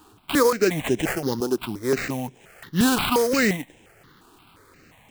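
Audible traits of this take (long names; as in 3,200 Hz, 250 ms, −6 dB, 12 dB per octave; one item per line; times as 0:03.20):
aliases and images of a low sample rate 5,700 Hz, jitter 20%
notches that jump at a steady rate 5.7 Hz 560–4,500 Hz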